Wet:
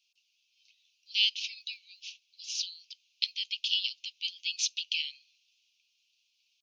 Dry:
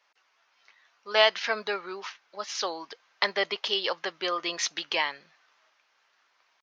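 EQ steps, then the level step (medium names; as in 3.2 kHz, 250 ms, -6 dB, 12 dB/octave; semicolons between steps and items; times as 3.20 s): steep high-pass 2.5 kHz 96 dB/octave; 0.0 dB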